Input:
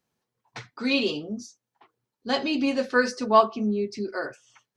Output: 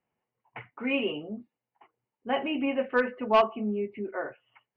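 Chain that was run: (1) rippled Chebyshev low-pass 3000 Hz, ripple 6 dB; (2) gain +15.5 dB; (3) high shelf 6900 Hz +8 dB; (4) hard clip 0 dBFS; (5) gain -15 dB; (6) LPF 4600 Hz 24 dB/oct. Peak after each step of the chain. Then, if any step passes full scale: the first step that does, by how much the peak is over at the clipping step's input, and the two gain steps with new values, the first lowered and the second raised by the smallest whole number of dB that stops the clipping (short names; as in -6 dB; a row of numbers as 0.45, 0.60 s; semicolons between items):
-7.5, +8.0, +8.0, 0.0, -15.0, -14.0 dBFS; step 2, 8.0 dB; step 2 +7.5 dB, step 5 -7 dB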